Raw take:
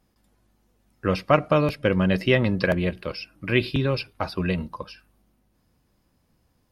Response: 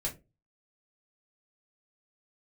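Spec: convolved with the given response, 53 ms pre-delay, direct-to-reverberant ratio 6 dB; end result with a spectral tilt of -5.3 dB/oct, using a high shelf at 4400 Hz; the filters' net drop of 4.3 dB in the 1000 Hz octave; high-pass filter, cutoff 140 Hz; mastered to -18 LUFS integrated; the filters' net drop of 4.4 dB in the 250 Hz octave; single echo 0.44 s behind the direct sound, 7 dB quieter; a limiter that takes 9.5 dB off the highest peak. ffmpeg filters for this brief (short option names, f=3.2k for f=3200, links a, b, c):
-filter_complex "[0:a]highpass=140,equalizer=f=250:t=o:g=-5,equalizer=f=1k:t=o:g=-5.5,highshelf=f=4.4k:g=-3,alimiter=limit=-15dB:level=0:latency=1,aecho=1:1:440:0.447,asplit=2[a][b];[1:a]atrim=start_sample=2205,adelay=53[c];[b][c]afir=irnorm=-1:irlink=0,volume=-8dB[d];[a][d]amix=inputs=2:normalize=0,volume=9dB"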